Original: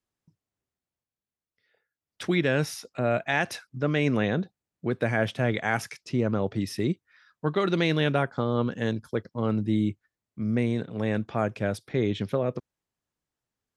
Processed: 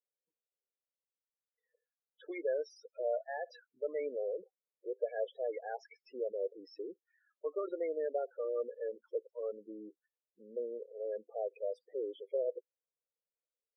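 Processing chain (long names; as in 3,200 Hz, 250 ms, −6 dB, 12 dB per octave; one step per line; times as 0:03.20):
four-pole ladder high-pass 430 Hz, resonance 60%
spectral peaks only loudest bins 8
level −3.5 dB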